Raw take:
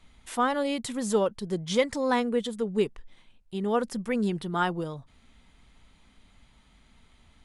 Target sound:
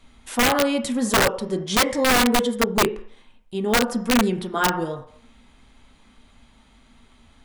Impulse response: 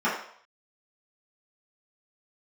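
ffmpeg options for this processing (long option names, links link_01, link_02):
-filter_complex "[0:a]bandreject=frequency=60:width_type=h:width=6,bandreject=frequency=120:width_type=h:width=6,asplit=2[link_01][link_02];[1:a]atrim=start_sample=2205,lowpass=6700[link_03];[link_02][link_03]afir=irnorm=-1:irlink=0,volume=-18dB[link_04];[link_01][link_04]amix=inputs=2:normalize=0,aeval=exprs='(mod(6.68*val(0)+1,2)-1)/6.68':channel_layout=same,volume=5dB"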